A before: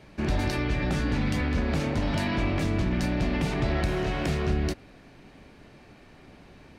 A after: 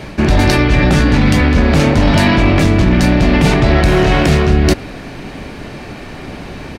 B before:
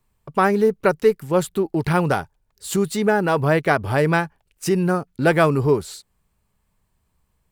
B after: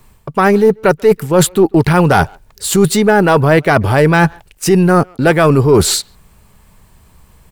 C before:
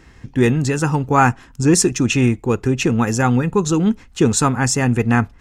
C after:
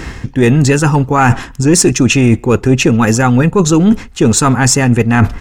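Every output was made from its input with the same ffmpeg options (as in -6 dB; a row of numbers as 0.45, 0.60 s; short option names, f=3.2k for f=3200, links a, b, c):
-filter_complex "[0:a]areverse,acompressor=threshold=-29dB:ratio=8,areverse,aeval=exprs='0.126*(cos(1*acos(clip(val(0)/0.126,-1,1)))-cos(1*PI/2))+0.0158*(cos(2*acos(clip(val(0)/0.126,-1,1)))-cos(2*PI/2))':c=same,asplit=2[a][b];[b]adelay=140,highpass=300,lowpass=3.4k,asoftclip=type=hard:threshold=-28dB,volume=-28dB[c];[a][c]amix=inputs=2:normalize=0,apsyclip=24.5dB,volume=-2dB"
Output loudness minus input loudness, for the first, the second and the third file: +16.0, +8.5, +6.5 LU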